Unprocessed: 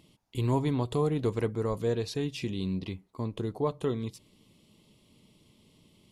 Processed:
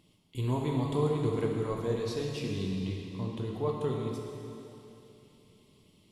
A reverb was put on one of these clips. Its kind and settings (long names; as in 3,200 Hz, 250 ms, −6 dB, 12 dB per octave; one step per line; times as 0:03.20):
dense smooth reverb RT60 3 s, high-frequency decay 1×, DRR −1 dB
level −5 dB